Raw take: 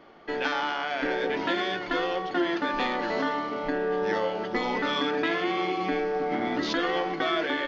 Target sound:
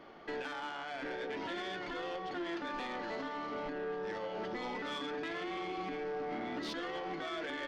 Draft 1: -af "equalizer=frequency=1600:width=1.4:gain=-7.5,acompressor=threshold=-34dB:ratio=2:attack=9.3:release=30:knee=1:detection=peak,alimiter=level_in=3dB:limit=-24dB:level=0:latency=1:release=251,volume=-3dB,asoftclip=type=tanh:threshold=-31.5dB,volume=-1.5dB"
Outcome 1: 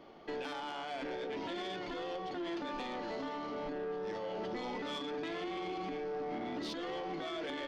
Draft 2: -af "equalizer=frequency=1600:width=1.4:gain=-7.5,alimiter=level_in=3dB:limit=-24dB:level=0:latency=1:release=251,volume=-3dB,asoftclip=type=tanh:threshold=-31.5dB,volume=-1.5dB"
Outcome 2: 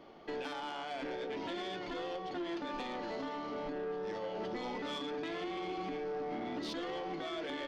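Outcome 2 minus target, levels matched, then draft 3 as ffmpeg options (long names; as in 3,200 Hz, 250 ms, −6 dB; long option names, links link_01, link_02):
2,000 Hz band −4.0 dB
-af "alimiter=level_in=3dB:limit=-24dB:level=0:latency=1:release=251,volume=-3dB,asoftclip=type=tanh:threshold=-31.5dB,volume=-1.5dB"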